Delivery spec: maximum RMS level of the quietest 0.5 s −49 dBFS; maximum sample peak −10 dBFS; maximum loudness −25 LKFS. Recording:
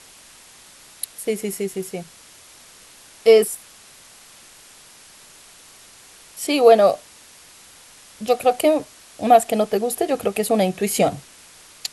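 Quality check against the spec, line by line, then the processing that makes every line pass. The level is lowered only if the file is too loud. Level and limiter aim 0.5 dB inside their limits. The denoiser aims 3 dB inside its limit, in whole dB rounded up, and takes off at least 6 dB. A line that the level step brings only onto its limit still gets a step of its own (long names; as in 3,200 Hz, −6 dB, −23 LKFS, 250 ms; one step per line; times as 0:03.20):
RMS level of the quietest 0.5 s −47 dBFS: out of spec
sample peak −1.5 dBFS: out of spec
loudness −19.0 LKFS: out of spec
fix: level −6.5 dB
brickwall limiter −10.5 dBFS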